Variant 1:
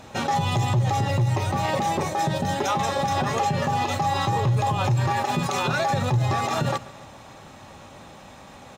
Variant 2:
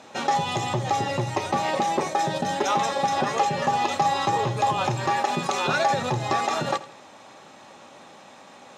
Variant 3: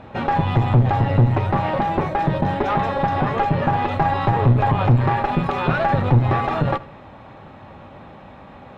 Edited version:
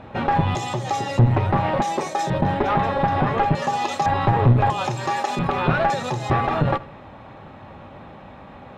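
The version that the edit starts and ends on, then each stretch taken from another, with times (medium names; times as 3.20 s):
3
0.55–1.19 s: from 2
1.82–2.30 s: from 2
3.55–4.06 s: from 2
4.70–5.39 s: from 2
5.90–6.30 s: from 2
not used: 1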